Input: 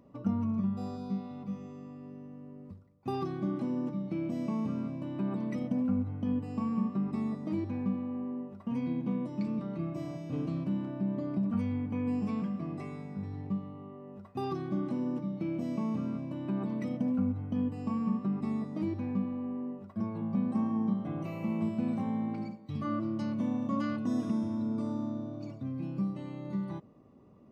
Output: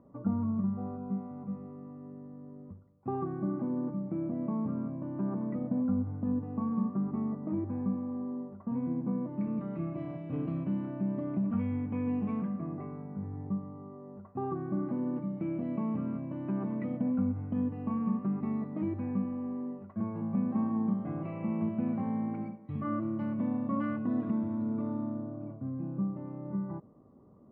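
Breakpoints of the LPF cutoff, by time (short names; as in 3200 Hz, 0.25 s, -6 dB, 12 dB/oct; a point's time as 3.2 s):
LPF 24 dB/oct
9.13 s 1500 Hz
9.73 s 2500 Hz
12.19 s 2500 Hz
12.89 s 1500 Hz
14.55 s 1500 Hz
15.22 s 2200 Hz
25 s 2200 Hz
25.54 s 1400 Hz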